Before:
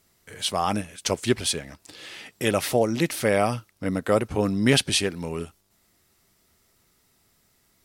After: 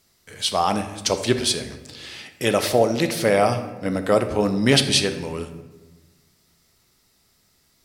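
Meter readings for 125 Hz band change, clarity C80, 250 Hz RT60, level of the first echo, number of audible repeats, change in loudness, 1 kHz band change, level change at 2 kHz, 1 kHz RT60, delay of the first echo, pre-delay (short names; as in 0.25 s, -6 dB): +2.0 dB, 12.0 dB, 1.6 s, none, none, +3.5 dB, +4.5 dB, +2.5 dB, 1.1 s, none, 14 ms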